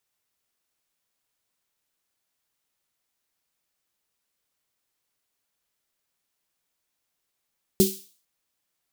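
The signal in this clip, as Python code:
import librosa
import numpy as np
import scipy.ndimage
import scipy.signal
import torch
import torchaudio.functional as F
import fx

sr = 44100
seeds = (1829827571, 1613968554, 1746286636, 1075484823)

y = fx.drum_snare(sr, seeds[0], length_s=0.45, hz=200.0, second_hz=380.0, noise_db=-7, noise_from_hz=3400.0, decay_s=0.26, noise_decay_s=0.46)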